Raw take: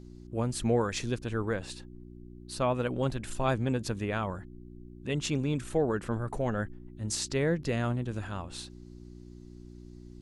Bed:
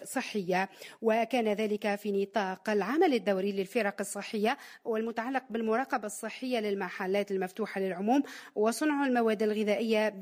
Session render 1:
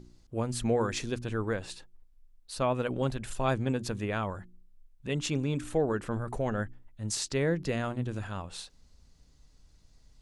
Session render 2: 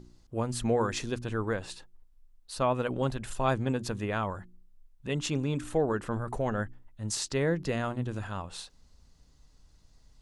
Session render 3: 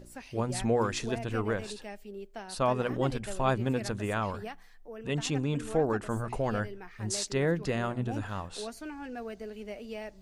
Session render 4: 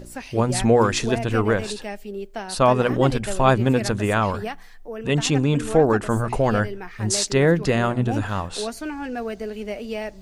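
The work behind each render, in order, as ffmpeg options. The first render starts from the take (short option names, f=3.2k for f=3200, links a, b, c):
-af "bandreject=f=60:t=h:w=4,bandreject=f=120:t=h:w=4,bandreject=f=180:t=h:w=4,bandreject=f=240:t=h:w=4,bandreject=f=300:t=h:w=4,bandreject=f=360:t=h:w=4"
-af "equalizer=f=1k:w=1.5:g=3,bandreject=f=2.3k:w=26"
-filter_complex "[1:a]volume=-12.5dB[a];[0:a][a]amix=inputs=2:normalize=0"
-af "volume=10.5dB"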